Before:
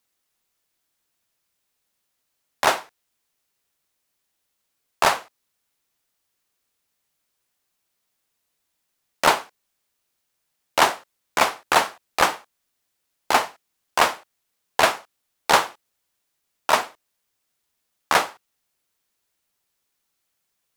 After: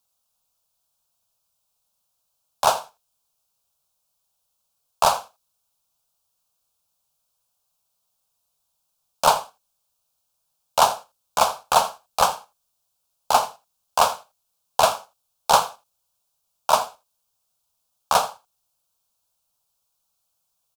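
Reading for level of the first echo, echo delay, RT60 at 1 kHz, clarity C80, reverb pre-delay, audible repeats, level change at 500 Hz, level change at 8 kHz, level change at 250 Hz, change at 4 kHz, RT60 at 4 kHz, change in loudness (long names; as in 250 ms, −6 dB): −17.0 dB, 82 ms, no reverb audible, no reverb audible, no reverb audible, 1, +0.5 dB, +2.0 dB, −7.5 dB, −1.0 dB, no reverb audible, 0.0 dB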